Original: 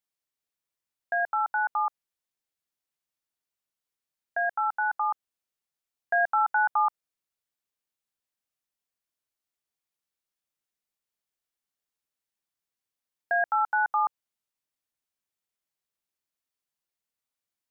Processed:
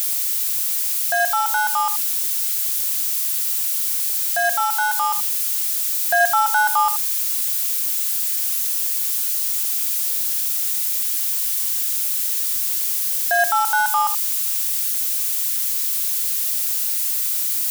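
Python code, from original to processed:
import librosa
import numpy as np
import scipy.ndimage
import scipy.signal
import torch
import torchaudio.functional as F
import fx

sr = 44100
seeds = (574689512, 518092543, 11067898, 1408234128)

y = x + 0.5 * 10.0 ** (-23.5 / 20.0) * np.diff(np.sign(x), prepend=np.sign(x[:1]))
y = y + 10.0 ** (-12.5 / 20.0) * np.pad(y, (int(79 * sr / 1000.0), 0))[:len(y)]
y = y * 10.0 ** (6.5 / 20.0)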